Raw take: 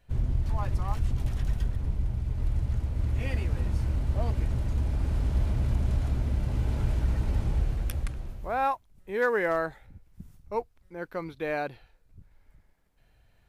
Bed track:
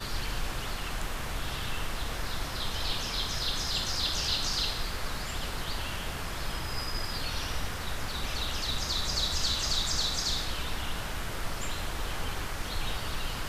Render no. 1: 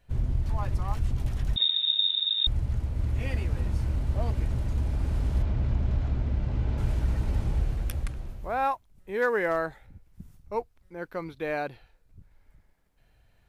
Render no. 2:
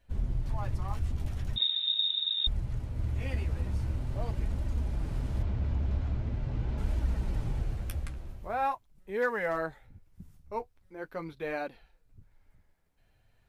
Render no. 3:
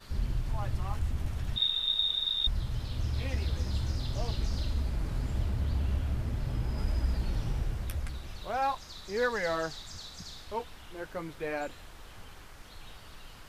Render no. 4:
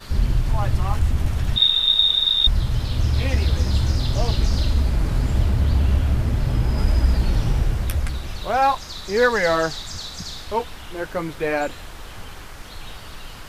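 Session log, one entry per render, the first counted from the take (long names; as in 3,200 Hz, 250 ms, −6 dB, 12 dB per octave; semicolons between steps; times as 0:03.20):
0:01.56–0:02.47: voice inversion scrambler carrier 3,700 Hz; 0:05.42–0:06.78: high-frequency loss of the air 120 metres
flanger 0.43 Hz, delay 3.1 ms, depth 9.9 ms, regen −37%
mix in bed track −15.5 dB
level +12 dB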